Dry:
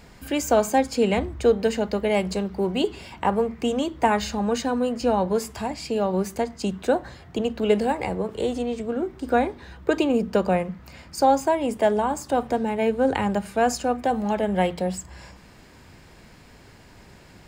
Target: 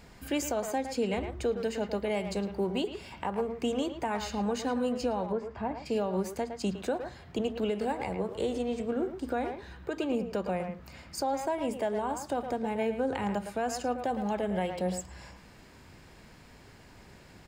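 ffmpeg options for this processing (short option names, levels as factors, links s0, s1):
-filter_complex "[0:a]asplit=2[s0][s1];[s1]adelay=110,highpass=300,lowpass=3400,asoftclip=type=hard:threshold=0.168,volume=0.355[s2];[s0][s2]amix=inputs=2:normalize=0,alimiter=limit=0.15:level=0:latency=1:release=300,asplit=3[s3][s4][s5];[s3]afade=t=out:st=5.31:d=0.02[s6];[s4]lowpass=1800,afade=t=in:st=5.31:d=0.02,afade=t=out:st=5.85:d=0.02[s7];[s5]afade=t=in:st=5.85:d=0.02[s8];[s6][s7][s8]amix=inputs=3:normalize=0,volume=0.596"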